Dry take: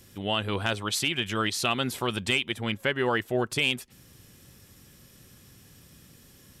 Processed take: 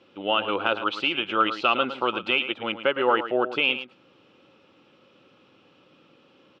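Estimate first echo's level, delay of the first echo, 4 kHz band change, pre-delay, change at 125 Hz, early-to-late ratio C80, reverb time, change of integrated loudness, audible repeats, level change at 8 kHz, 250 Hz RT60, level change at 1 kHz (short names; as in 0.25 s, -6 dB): -11.5 dB, 0.11 s, +1.5 dB, none, -13.5 dB, none, none, +3.0 dB, 1, under -25 dB, none, +7.5 dB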